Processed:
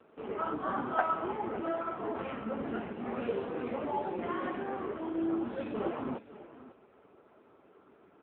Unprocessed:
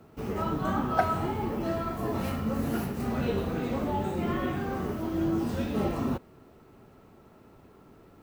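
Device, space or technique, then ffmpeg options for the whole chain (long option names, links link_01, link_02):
satellite phone: -af "highpass=320,lowpass=3200,aecho=1:1:551:0.158" -ar 8000 -c:a libopencore_amrnb -b:a 5900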